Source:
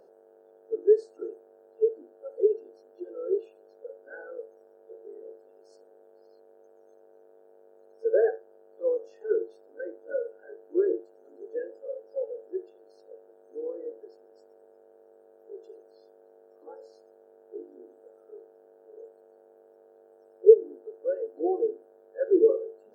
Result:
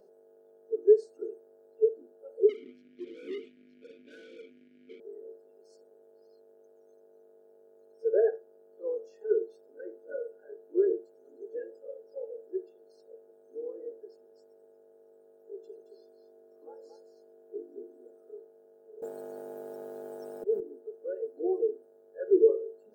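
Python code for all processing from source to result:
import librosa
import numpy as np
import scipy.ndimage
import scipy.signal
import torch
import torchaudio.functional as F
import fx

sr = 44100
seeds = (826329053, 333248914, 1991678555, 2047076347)

y = fx.chain(x, sr, fx.leveller(passes=5),
    fx.vowel_filter(vowel='i'), at=(2.49, 5.0))
y = fx.chain(y, sr, fx.low_shelf(hz=200.0, db=6.0),
    fx.echo_single(ms=223, db=-7.0), at=(15.63, 18.36))
y = fx.chain(y, sr, fx.auto_swell(attack_ms=325.0),
    fx.spectral_comp(ratio=2.0), at=(19.02, 20.6))
y = fx.peak_eq(y, sr, hz=1300.0, db=-8.5, octaves=2.7)
y = y + 0.48 * np.pad(y, (int(4.8 * sr / 1000.0), 0))[:len(y)]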